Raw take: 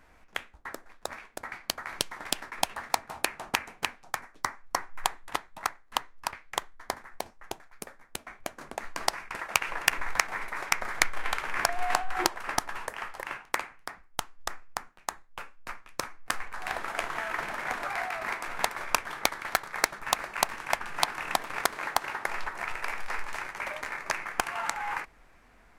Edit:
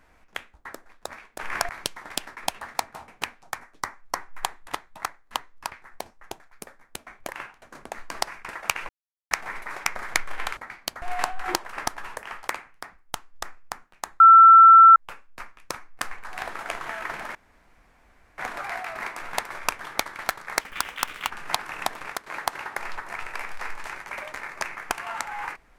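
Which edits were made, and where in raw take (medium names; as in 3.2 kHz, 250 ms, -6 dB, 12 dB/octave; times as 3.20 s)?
1.39–1.84 s: swap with 11.43–11.73 s
3.23–3.69 s: delete
6.43–7.02 s: delete
9.75–10.17 s: mute
13.19–13.53 s: move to 8.48 s
15.25 s: add tone 1.34 kHz -7 dBFS 0.76 s
17.64 s: insert room tone 1.03 s
19.87–20.79 s: speed 133%
21.50–21.75 s: fade out, to -15 dB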